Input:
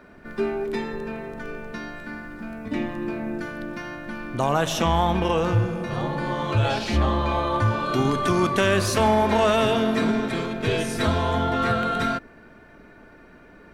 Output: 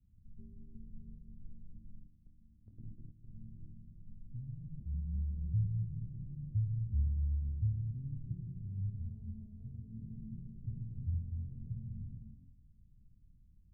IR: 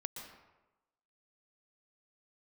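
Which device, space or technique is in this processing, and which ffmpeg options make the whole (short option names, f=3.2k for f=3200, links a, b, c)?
club heard from the street: -filter_complex "[0:a]alimiter=limit=-16dB:level=0:latency=1:release=34,lowpass=f=120:w=0.5412,lowpass=f=120:w=1.3066[a];[1:a]atrim=start_sample=2205[b];[a][b]afir=irnorm=-1:irlink=0,asettb=1/sr,asplit=3[c][d][e];[c]atrim=end=2.074[f];[d]atrim=start=2.07:end=3.33,asetpts=PTS-STARTPTS,afade=t=in:d=0.004:c=qsin,afade=t=out:st=1.256:d=0.004:c=qsin,agate=range=-10dB:threshold=-43dB:ratio=16:detection=peak[g];[e]atrim=start=3.326[h];[f][g]acrossfade=d=0.004:c1=hsin:c2=qsin[i];[i][h]acrossfade=d=0.004:c1=qsin:c2=hsin,volume=-2.5dB"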